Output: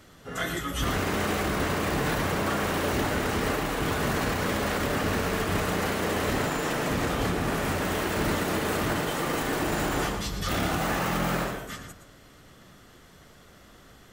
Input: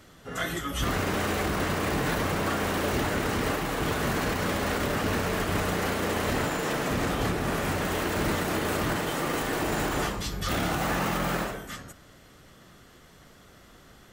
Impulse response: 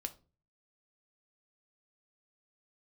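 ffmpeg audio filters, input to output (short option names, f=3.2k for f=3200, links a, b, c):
-filter_complex "[0:a]asplit=2[a][b];[1:a]atrim=start_sample=2205,adelay=116[c];[b][c]afir=irnorm=-1:irlink=0,volume=-7.5dB[d];[a][d]amix=inputs=2:normalize=0"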